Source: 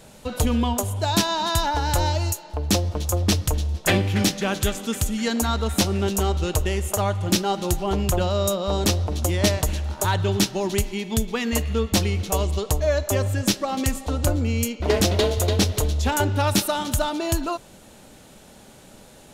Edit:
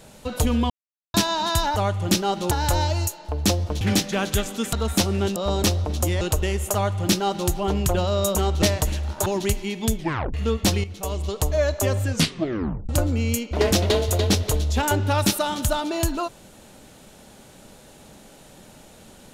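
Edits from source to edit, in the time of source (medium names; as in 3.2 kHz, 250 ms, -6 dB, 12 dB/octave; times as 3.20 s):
0.70–1.14 s: mute
3.06–4.10 s: delete
5.02–5.54 s: delete
6.17–6.44 s: swap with 8.58–9.43 s
6.97–7.72 s: copy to 1.76 s
10.07–10.55 s: delete
11.26 s: tape stop 0.37 s
12.13–12.78 s: fade in, from -12.5 dB
13.36 s: tape stop 0.82 s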